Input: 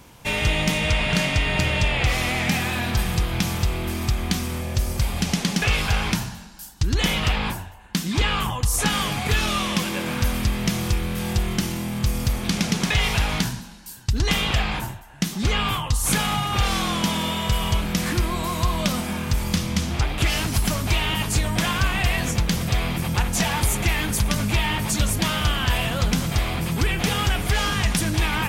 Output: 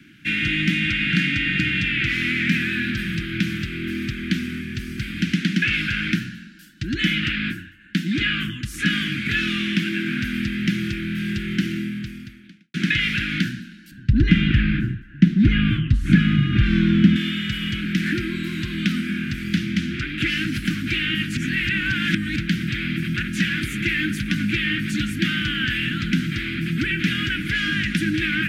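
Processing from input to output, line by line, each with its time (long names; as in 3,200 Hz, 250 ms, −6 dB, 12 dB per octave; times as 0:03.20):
0:11.78–0:12.74: fade out quadratic
0:13.91–0:17.16: RIAA equalisation playback
0:21.37–0:22.36: reverse
whole clip: Chebyshev band-stop filter 330–1,500 Hz, order 4; three-way crossover with the lows and the highs turned down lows −21 dB, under 160 Hz, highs −21 dB, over 3,000 Hz; level +6.5 dB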